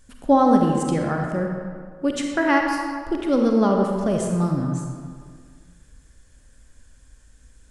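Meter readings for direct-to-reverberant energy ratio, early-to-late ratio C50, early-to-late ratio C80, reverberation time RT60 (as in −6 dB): 1.5 dB, 2.0 dB, 3.5 dB, 1.9 s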